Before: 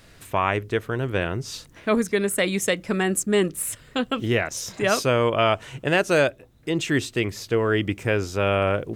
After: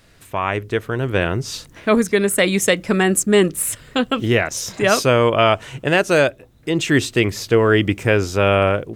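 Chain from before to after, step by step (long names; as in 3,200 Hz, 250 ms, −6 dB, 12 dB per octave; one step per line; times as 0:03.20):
automatic gain control
level −1.5 dB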